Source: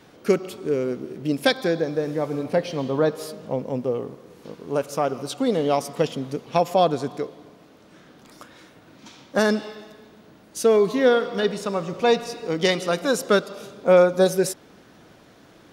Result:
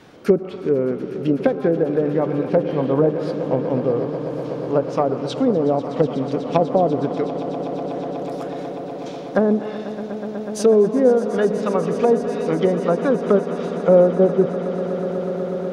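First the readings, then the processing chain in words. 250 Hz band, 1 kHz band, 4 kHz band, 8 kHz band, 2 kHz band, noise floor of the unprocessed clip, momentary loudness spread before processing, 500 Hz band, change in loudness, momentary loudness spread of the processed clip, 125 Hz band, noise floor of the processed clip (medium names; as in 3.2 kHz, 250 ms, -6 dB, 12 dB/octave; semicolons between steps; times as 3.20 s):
+6.0 dB, +1.0 dB, -9.0 dB, no reading, -5.5 dB, -52 dBFS, 12 LU, +4.0 dB, +2.5 dB, 12 LU, +6.5 dB, -31 dBFS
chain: treble shelf 6.2 kHz -6 dB; low-pass that closes with the level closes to 560 Hz, closed at -17 dBFS; echo with a slow build-up 123 ms, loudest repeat 8, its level -16.5 dB; trim +4.5 dB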